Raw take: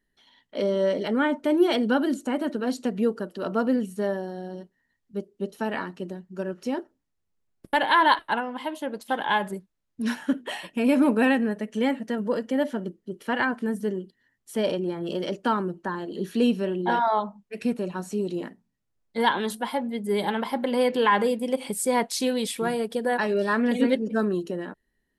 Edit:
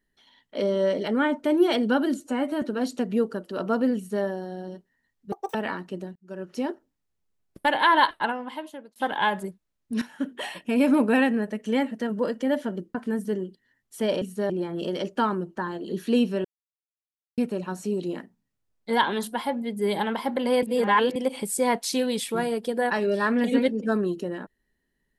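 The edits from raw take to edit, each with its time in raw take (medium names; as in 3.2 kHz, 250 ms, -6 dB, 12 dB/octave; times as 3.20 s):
2.20–2.48 s: stretch 1.5×
3.82–4.10 s: copy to 14.77 s
5.18–5.63 s: speed 199%
6.24–6.63 s: fade in
8.21–9.04 s: fade out equal-power
10.10–10.52 s: fade in, from -14.5 dB
13.03–13.50 s: delete
16.72–17.65 s: mute
20.90–21.43 s: reverse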